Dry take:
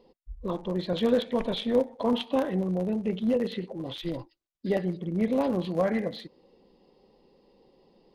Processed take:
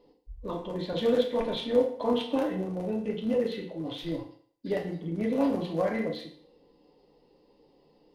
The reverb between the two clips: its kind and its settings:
feedback delay network reverb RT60 0.54 s, low-frequency decay 0.85×, high-frequency decay 0.95×, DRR 0 dB
level −4 dB

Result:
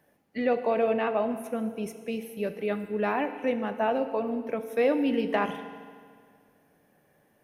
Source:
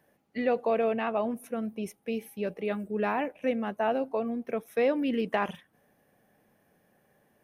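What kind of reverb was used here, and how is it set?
feedback delay network reverb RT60 1.9 s, low-frequency decay 1.05×, high-frequency decay 0.9×, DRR 8.5 dB
level +1 dB

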